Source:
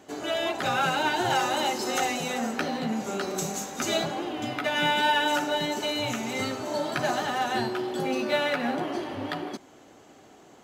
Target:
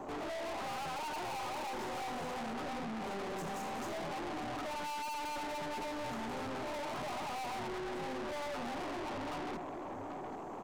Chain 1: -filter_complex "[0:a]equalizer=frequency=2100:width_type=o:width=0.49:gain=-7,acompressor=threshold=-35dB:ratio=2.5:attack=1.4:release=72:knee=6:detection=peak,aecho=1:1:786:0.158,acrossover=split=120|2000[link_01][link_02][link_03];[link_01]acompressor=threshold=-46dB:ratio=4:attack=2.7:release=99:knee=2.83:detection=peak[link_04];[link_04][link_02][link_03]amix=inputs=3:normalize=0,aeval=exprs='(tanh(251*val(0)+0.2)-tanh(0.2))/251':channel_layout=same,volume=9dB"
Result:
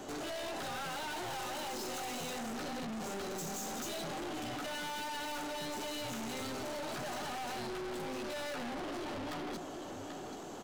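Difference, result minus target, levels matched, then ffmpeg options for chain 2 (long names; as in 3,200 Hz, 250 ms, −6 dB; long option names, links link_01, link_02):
4,000 Hz band +4.0 dB
-filter_complex "[0:a]equalizer=frequency=2100:width_type=o:width=0.49:gain=-7,acompressor=threshold=-35dB:ratio=2.5:attack=1.4:release=72:knee=6:detection=peak,highshelf=frequency=1500:width_type=q:width=3:gain=-12.5,aecho=1:1:786:0.158,acrossover=split=120|2000[link_01][link_02][link_03];[link_01]acompressor=threshold=-46dB:ratio=4:attack=2.7:release=99:knee=2.83:detection=peak[link_04];[link_04][link_02][link_03]amix=inputs=3:normalize=0,aeval=exprs='(tanh(251*val(0)+0.2)-tanh(0.2))/251':channel_layout=same,volume=9dB"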